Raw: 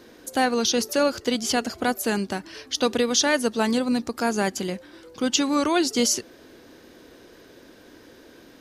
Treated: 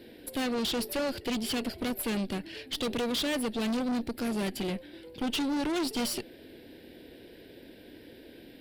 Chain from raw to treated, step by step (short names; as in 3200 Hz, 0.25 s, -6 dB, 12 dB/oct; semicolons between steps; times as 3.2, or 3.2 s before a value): fixed phaser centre 2800 Hz, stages 4; tube stage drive 31 dB, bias 0.6; gain +3.5 dB